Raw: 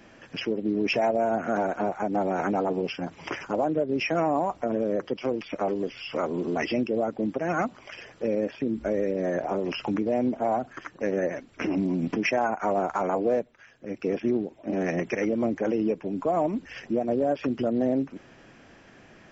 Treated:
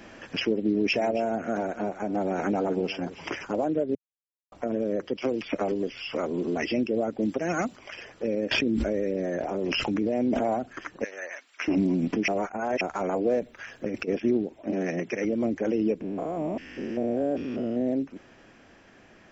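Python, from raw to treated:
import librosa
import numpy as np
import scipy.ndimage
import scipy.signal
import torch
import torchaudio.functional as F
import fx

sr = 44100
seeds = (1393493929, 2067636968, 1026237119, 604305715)

y = fx.echo_single(x, sr, ms=270, db=-16.5, at=(0.98, 3.29), fade=0.02)
y = fx.band_squash(y, sr, depth_pct=100, at=(5.22, 5.72))
y = fx.high_shelf(y, sr, hz=5000.0, db=11.0, at=(7.21, 7.76))
y = fx.env_flatten(y, sr, amount_pct=100, at=(8.51, 10.54))
y = fx.highpass(y, sr, hz=1400.0, slope=12, at=(11.04, 11.68))
y = fx.over_compress(y, sr, threshold_db=-37.0, ratio=-1.0, at=(13.4, 14.07), fade=0.02)
y = fx.ellip_bandpass(y, sr, low_hz=120.0, high_hz=6500.0, order=3, stop_db=40, at=(14.72, 15.25))
y = fx.spec_steps(y, sr, hold_ms=200, at=(16.0, 17.86), fade=0.02)
y = fx.edit(y, sr, fx.silence(start_s=3.95, length_s=0.57),
    fx.reverse_span(start_s=12.28, length_s=0.53), tone=tone)
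y = fx.dynamic_eq(y, sr, hz=1000.0, q=1.0, threshold_db=-40.0, ratio=4.0, max_db=-7)
y = fx.rider(y, sr, range_db=10, speed_s=2.0)
y = fx.peak_eq(y, sr, hz=140.0, db=-5.5, octaves=0.47)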